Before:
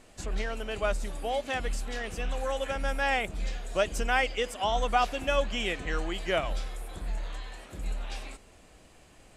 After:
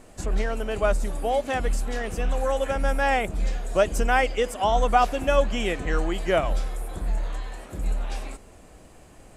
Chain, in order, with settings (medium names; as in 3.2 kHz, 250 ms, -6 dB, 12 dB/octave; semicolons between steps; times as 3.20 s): peaking EQ 3.4 kHz -8 dB 2.1 oct; trim +7.5 dB